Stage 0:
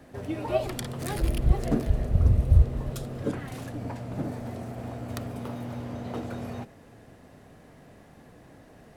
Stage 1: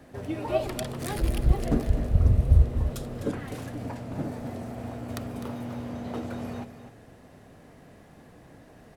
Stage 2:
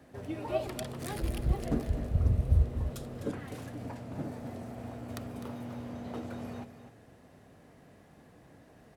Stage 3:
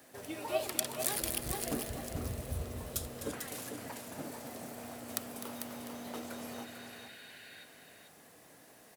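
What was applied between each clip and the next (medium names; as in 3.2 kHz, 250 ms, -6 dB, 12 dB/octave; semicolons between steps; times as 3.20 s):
delay 254 ms -11 dB
high-pass 45 Hz; trim -5.5 dB
RIAA curve recording; spectral replace 6.62–7.61 s, 1.4–4.9 kHz before; delay 446 ms -7 dB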